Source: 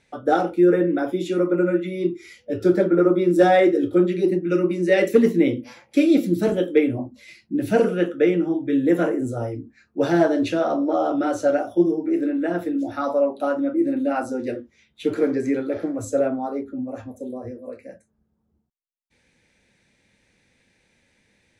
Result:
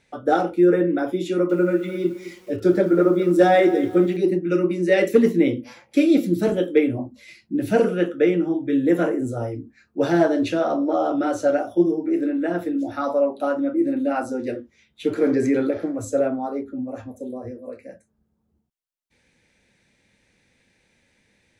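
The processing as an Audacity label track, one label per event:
1.280000	4.170000	feedback echo at a low word length 214 ms, feedback 35%, word length 7 bits, level −14 dB
15.210000	15.710000	envelope flattener amount 50%

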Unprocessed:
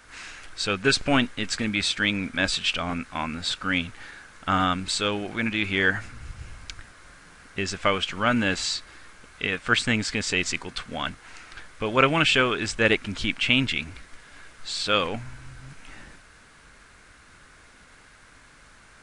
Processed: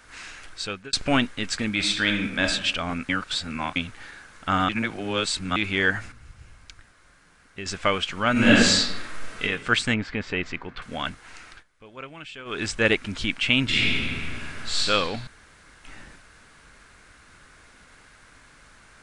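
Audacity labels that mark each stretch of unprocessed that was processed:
0.480000	0.930000	fade out
1.710000	2.460000	thrown reverb, RT60 0.82 s, DRR 4 dB
3.090000	3.760000	reverse
4.690000	5.560000	reverse
6.120000	7.660000	clip gain −7.5 dB
8.320000	9.430000	thrown reverb, RT60 0.87 s, DRR −9 dB
9.940000	10.820000	low-pass filter 2,200 Hz
11.490000	12.600000	duck −20 dB, fades 0.15 s
13.640000	14.770000	thrown reverb, RT60 2.3 s, DRR −8.5 dB
15.270000	15.840000	fill with room tone

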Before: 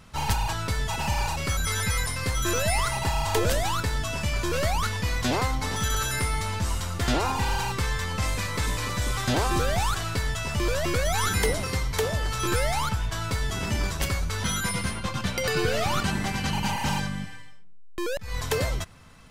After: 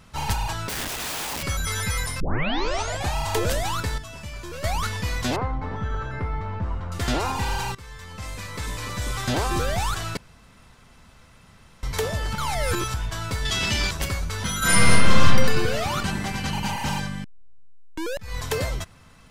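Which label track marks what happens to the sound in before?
0.690000	1.430000	wrap-around overflow gain 25.5 dB
2.200000	2.200000	tape start 0.96 s
3.980000	4.640000	clip gain −9 dB
5.360000	6.920000	low-pass filter 1,300 Hz
7.750000	9.270000	fade in, from −18.5 dB
10.170000	11.830000	fill with room tone
12.330000	12.940000	reverse
13.450000	13.910000	parametric band 3,700 Hz +12.5 dB 2 octaves
14.580000	15.250000	thrown reverb, RT60 1.4 s, DRR −11.5 dB
17.240000	17.240000	tape start 0.83 s

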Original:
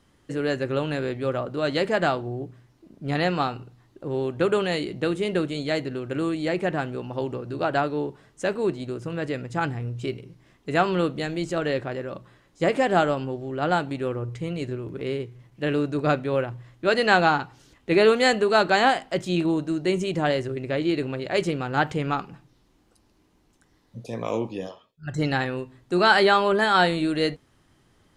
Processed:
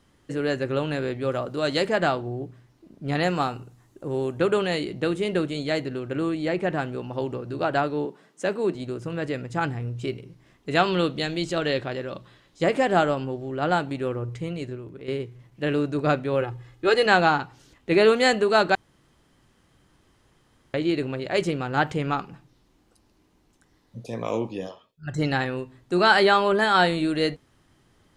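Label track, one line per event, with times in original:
1.290000	1.870000	bass and treble bass −1 dB, treble +7 dB
3.230000	4.390000	high shelf with overshoot 5,600 Hz +6.5 dB, Q 1.5
6.090000	6.700000	high-shelf EQ 4,900 Hz −6 dB
8.050000	8.750000	Chebyshev high-pass filter 170 Hz, order 4
10.710000	12.630000	parametric band 3,700 Hz +8 dB 1 octave
14.370000	15.080000	fade out, to −10 dB
16.410000	17.060000	comb filter 2.4 ms
18.750000	20.740000	fill with room tone

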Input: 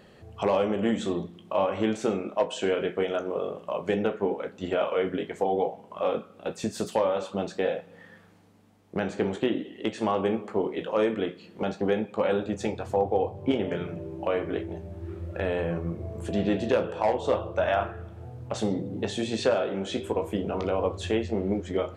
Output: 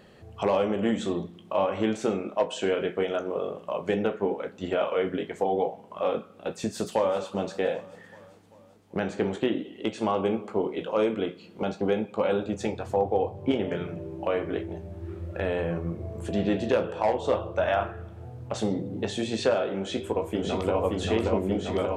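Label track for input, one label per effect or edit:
6.500000	7.200000	delay throw 390 ms, feedback 60%, level −18 dB
9.590000	12.580000	notch filter 1,800 Hz, Q 7.3
19.760000	20.800000	delay throw 580 ms, feedback 80%, level −2.5 dB

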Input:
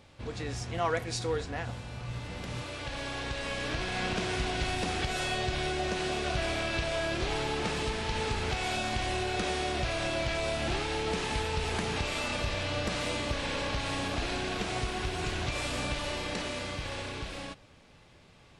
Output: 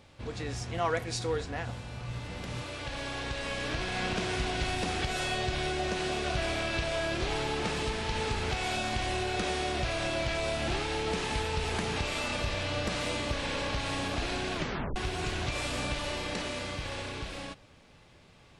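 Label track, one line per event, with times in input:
14.550000	14.550000	tape stop 0.41 s

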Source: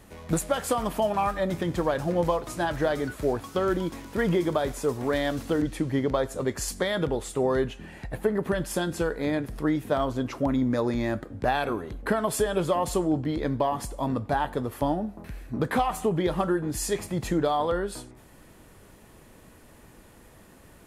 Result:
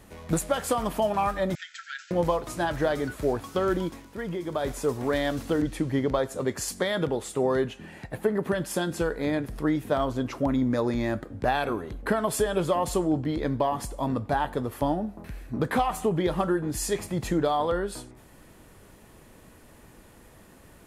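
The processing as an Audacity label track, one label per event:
1.550000	2.110000	linear-phase brick-wall band-pass 1,300–7,900 Hz
3.840000	4.680000	duck −8.5 dB, fades 0.33 s quadratic
6.190000	8.990000	high-pass filter 90 Hz

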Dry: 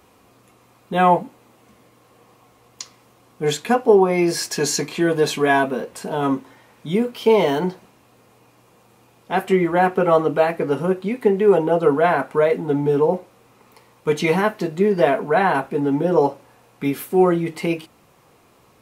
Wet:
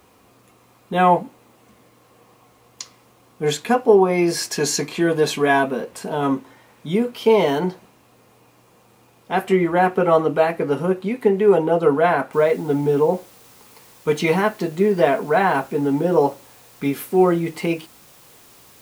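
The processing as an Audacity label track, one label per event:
12.330000	12.330000	noise floor change −69 dB −50 dB

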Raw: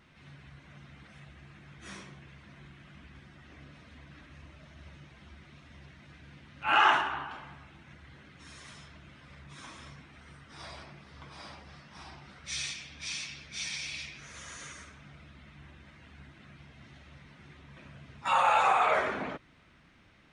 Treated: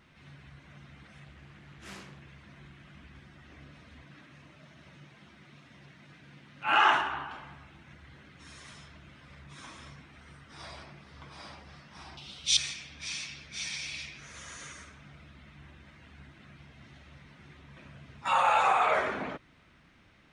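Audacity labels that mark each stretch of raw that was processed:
1.240000	2.210000	highs frequency-modulated by the lows depth 0.49 ms
4.020000	6.880000	high-pass filter 110 Hz 24 dB per octave
12.170000	12.570000	high shelf with overshoot 2,400 Hz +10 dB, Q 3

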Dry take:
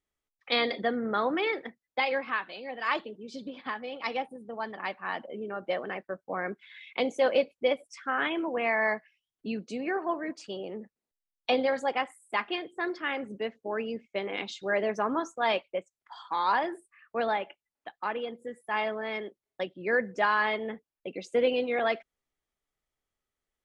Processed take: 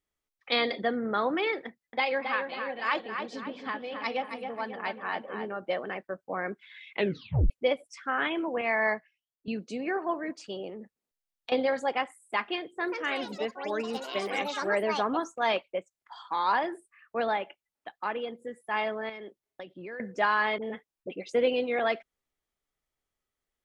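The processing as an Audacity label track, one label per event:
1.660000	5.550000	feedback echo with a low-pass in the loop 270 ms, feedback 49%, low-pass 3,300 Hz, level −6 dB
6.930000	6.930000	tape stop 0.57 s
8.610000	9.480000	multiband upward and downward expander depth 70%
10.690000	11.520000	downward compressor, threshold −37 dBFS
12.630000	16.320000	delay with pitch and tempo change per echo 175 ms, each echo +5 semitones, echoes 3, each echo −6 dB
19.090000	20.000000	downward compressor, threshold −38 dBFS
20.580000	21.330000	all-pass dispersion highs, late by 46 ms, half as late at 760 Hz

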